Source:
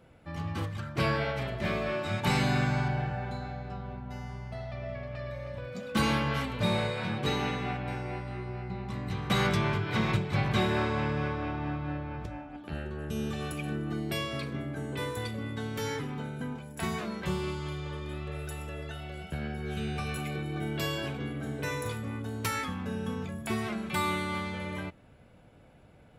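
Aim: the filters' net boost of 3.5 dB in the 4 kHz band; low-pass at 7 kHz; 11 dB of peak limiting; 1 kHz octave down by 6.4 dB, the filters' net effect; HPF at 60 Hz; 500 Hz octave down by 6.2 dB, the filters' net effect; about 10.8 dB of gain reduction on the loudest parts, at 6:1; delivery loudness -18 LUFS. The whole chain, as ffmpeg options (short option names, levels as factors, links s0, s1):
-af "highpass=60,lowpass=7000,equalizer=f=500:t=o:g=-6.5,equalizer=f=1000:t=o:g=-6.5,equalizer=f=4000:t=o:g=5,acompressor=threshold=0.0158:ratio=6,volume=16.8,alimiter=limit=0.355:level=0:latency=1"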